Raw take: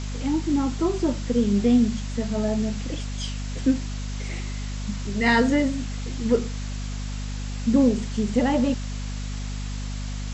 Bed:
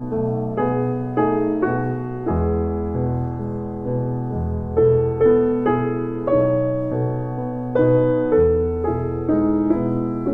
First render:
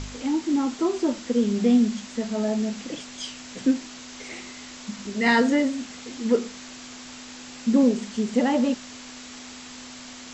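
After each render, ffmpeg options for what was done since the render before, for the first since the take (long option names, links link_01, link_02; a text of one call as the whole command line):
ffmpeg -i in.wav -af "bandreject=frequency=50:width_type=h:width=4,bandreject=frequency=100:width_type=h:width=4,bandreject=frequency=150:width_type=h:width=4,bandreject=frequency=200:width_type=h:width=4" out.wav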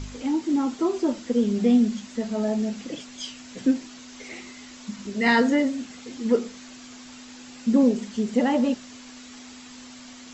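ffmpeg -i in.wav -af "afftdn=noise_reduction=6:noise_floor=-42" out.wav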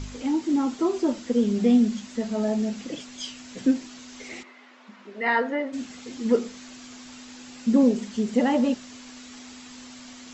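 ffmpeg -i in.wav -filter_complex "[0:a]asplit=3[link_01][link_02][link_03];[link_01]afade=type=out:start_time=4.42:duration=0.02[link_04];[link_02]highpass=480,lowpass=2000,afade=type=in:start_time=4.42:duration=0.02,afade=type=out:start_time=5.72:duration=0.02[link_05];[link_03]afade=type=in:start_time=5.72:duration=0.02[link_06];[link_04][link_05][link_06]amix=inputs=3:normalize=0" out.wav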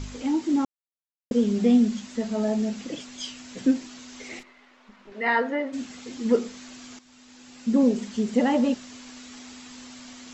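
ffmpeg -i in.wav -filter_complex "[0:a]asettb=1/sr,asplit=3[link_01][link_02][link_03];[link_01]atrim=end=4.394[link_04];[link_02]atrim=start=4.39:end=5.12,asetpts=PTS-STARTPTS,afade=type=in:duration=0.004:curve=qsin,afade=type=out:start_time=0.726:duration=0.004:curve=qsin,aeval=exprs='(tanh(79.4*val(0)+0.75)-tanh(0.75))/79.4':channel_layout=same[link_05];[link_03]atrim=start=5.116[link_06];[link_04][link_05]acrossfade=duration=0.004:curve1=hsin:curve2=qsin[link_07];[link_07][link_06]acrossfade=duration=0.004:curve1=qsin:curve2=hsin,asplit=4[link_08][link_09][link_10][link_11];[link_08]atrim=end=0.65,asetpts=PTS-STARTPTS,afade=type=out:start_time=0.646:duration=0.004:curve=hsin[link_12];[link_09]atrim=start=0.65:end=1.31,asetpts=PTS-STARTPTS,volume=0[link_13];[link_10]atrim=start=1.31:end=6.99,asetpts=PTS-STARTPTS,afade=type=in:duration=0.004:curve=hsin,afade=type=out:start_time=5.676:duration=0.004:curve=hsin:silence=0.199526[link_14];[link_11]atrim=start=6.99,asetpts=PTS-STARTPTS,afade=type=in:duration=1.01:silence=0.199526[link_15];[link_12][link_13][link_14][link_15]concat=n=4:v=0:a=1" out.wav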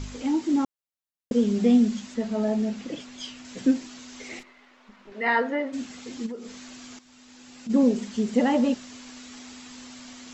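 ffmpeg -i in.wav -filter_complex "[0:a]asettb=1/sr,asplit=3[link_01][link_02][link_03];[link_01]atrim=end=2.144[link_04];[link_02]atrim=start=2.14:end=3.45,asetpts=PTS-STARTPTS,afade=type=in:duration=0.004:curve=qsin,afade=type=out:start_time=1.306:duration=0.004:curve=qsin,highshelf=frequency=6100:gain=-9.5[link_05];[link_03]atrim=start=3.446[link_06];[link_04][link_05]acrossfade=duration=0.004:curve1=hsin:curve2=qsin[link_07];[link_07][link_06]acrossfade=duration=0.004:curve1=qsin:curve2=hsin,asplit=3[link_08][link_09][link_10];[link_08]afade=type=out:start_time=6.25:duration=0.02[link_11];[link_09]acompressor=threshold=-34dB:ratio=5:attack=3.2:release=140:knee=1:detection=peak,afade=type=in:start_time=6.25:duration=0.02,afade=type=out:start_time=7.69:duration=0.02[link_12];[link_10]afade=type=in:start_time=7.69:duration=0.02[link_13];[link_11][link_12][link_13]amix=inputs=3:normalize=0" out.wav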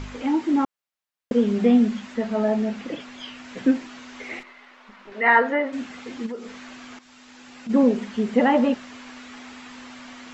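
ffmpeg -i in.wav -filter_complex "[0:a]acrossover=split=3000[link_01][link_02];[link_02]acompressor=threshold=-55dB:ratio=4:attack=1:release=60[link_03];[link_01][link_03]amix=inputs=2:normalize=0,equalizer=frequency=1500:width=0.35:gain=8" out.wav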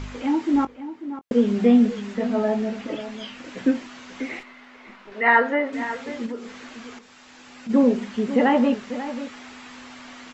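ffmpeg -i in.wav -filter_complex "[0:a]asplit=2[link_01][link_02];[link_02]adelay=21,volume=-13dB[link_03];[link_01][link_03]amix=inputs=2:normalize=0,asplit=2[link_04][link_05];[link_05]adelay=542.3,volume=-12dB,highshelf=frequency=4000:gain=-12.2[link_06];[link_04][link_06]amix=inputs=2:normalize=0" out.wav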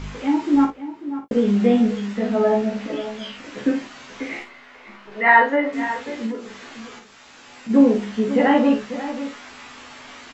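ffmpeg -i in.wav -filter_complex "[0:a]asplit=2[link_01][link_02];[link_02]adelay=14,volume=-4.5dB[link_03];[link_01][link_03]amix=inputs=2:normalize=0,asplit=2[link_04][link_05];[link_05]aecho=0:1:40|54:0.376|0.251[link_06];[link_04][link_06]amix=inputs=2:normalize=0" out.wav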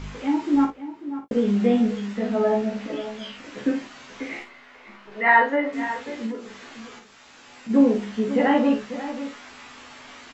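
ffmpeg -i in.wav -af "volume=-3dB" out.wav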